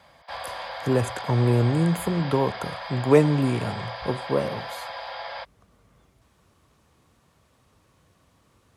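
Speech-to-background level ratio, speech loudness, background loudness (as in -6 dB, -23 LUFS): 11.0 dB, -24.0 LUFS, -35.0 LUFS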